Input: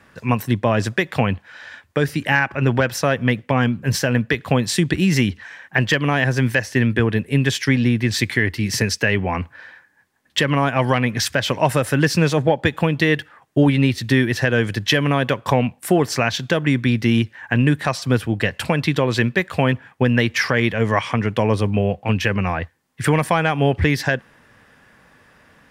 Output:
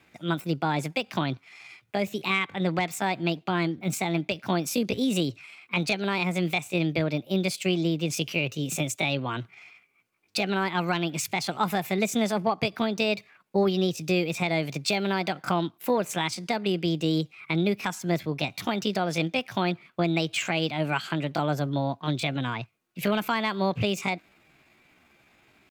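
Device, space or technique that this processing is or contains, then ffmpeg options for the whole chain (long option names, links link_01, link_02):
chipmunk voice: -af "asetrate=60591,aresample=44100,atempo=0.727827,volume=-8.5dB"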